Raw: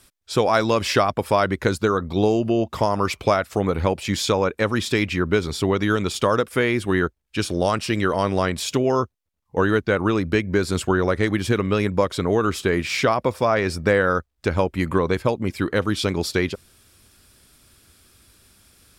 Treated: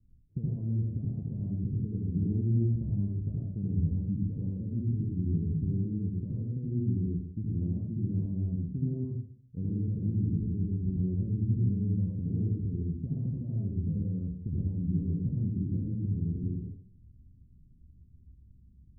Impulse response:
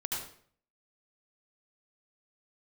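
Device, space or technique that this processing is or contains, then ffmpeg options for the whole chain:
club heard from the street: -filter_complex "[0:a]alimiter=limit=0.211:level=0:latency=1:release=313,lowpass=f=200:w=0.5412,lowpass=f=200:w=1.3066[s0];[1:a]atrim=start_sample=2205[s1];[s0][s1]afir=irnorm=-1:irlink=0"

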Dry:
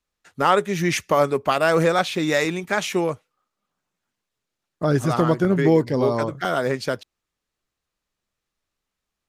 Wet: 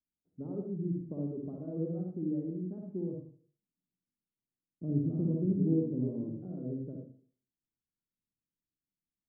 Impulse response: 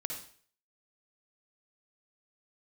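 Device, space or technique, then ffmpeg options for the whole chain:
next room: -filter_complex "[0:a]lowpass=f=270:w=0.5412,lowpass=f=270:w=1.3066,aemphasis=mode=production:type=riaa[s0];[1:a]atrim=start_sample=2205[s1];[s0][s1]afir=irnorm=-1:irlink=0"

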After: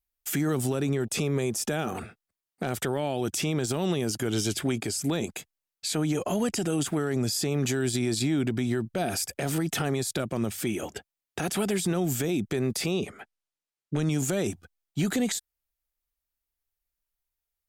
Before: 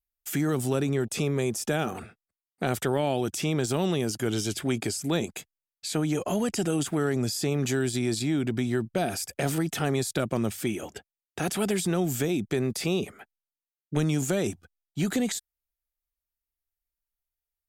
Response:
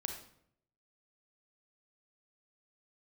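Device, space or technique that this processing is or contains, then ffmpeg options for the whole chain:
clipper into limiter: -filter_complex "[0:a]asettb=1/sr,asplit=3[s0][s1][s2];[s0]atrim=end=12.914[s3];[s1]atrim=start=12.91:end=14.11,asetpts=PTS-STARTPTS,afade=t=in:d=0.004:c=qsin,afade=t=out:st=1.196:d=0.004:c=qsin,lowpass=9300[s4];[s2]atrim=start=14.106[s5];[s3][s4]acrossfade=d=0.004:c1=hsin:c2=qsin[s6];[s6][s5]acrossfade=d=0.004:c1=qsin:c2=hsin,asoftclip=type=hard:threshold=0.188,alimiter=limit=0.0891:level=0:latency=1:release=127,volume=1.41"

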